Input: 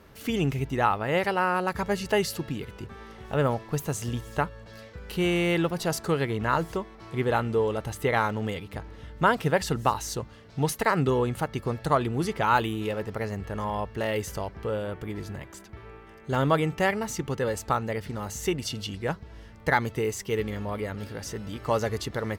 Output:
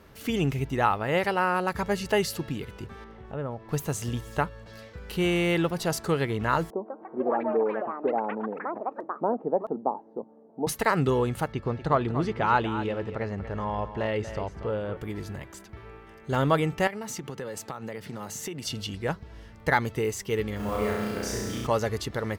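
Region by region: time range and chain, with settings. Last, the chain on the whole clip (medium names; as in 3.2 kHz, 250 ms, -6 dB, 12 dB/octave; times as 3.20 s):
3.04–3.69 s: low-pass 1.2 kHz 6 dB/octave + compression 1.5:1, threshold -42 dBFS
6.70–10.67 s: Chebyshev band-pass 220–830 Hz, order 3 + ever faster or slower copies 160 ms, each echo +6 st, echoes 3, each echo -6 dB
11.52–14.97 s: low-pass 5.9 kHz + treble shelf 4.1 kHz -9.5 dB + delay 238 ms -11.5 dB
16.87–18.67 s: high-pass 120 Hz 24 dB/octave + compression 10:1, threshold -31 dBFS
20.56–21.67 s: modulation noise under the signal 25 dB + flutter echo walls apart 5.7 m, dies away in 1.4 s
whole clip: none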